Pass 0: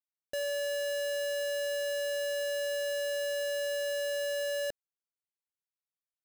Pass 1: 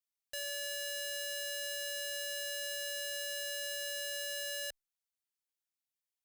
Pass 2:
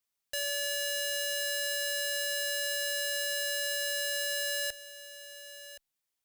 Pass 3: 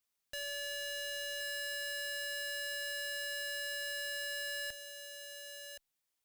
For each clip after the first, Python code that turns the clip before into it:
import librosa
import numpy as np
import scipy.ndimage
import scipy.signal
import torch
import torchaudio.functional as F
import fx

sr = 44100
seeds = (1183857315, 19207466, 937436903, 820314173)

y1 = fx.tone_stack(x, sr, knobs='10-0-10')
y1 = y1 * 10.0 ** (2.5 / 20.0)
y2 = y1 + 10.0 ** (-14.5 / 20.0) * np.pad(y1, (int(1071 * sr / 1000.0), 0))[:len(y1)]
y2 = y2 * 10.0 ** (6.5 / 20.0)
y3 = 10.0 ** (-31.0 / 20.0) * np.tanh(y2 / 10.0 ** (-31.0 / 20.0))